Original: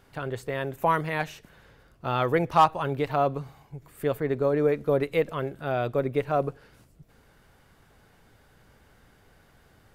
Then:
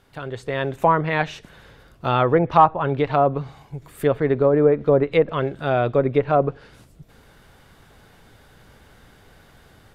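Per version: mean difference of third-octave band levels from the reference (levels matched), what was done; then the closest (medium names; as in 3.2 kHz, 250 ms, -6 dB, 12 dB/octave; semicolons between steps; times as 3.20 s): 3.0 dB: low-pass that closes with the level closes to 1.3 kHz, closed at -19.5 dBFS; peaking EQ 3.6 kHz +4 dB 0.37 oct; level rider gain up to 7.5 dB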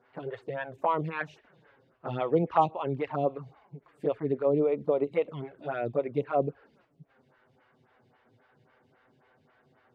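6.5 dB: touch-sensitive flanger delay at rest 8.5 ms, full sweep at -21 dBFS; band-pass 120–3100 Hz; lamp-driven phase shifter 3.7 Hz; trim +1.5 dB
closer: first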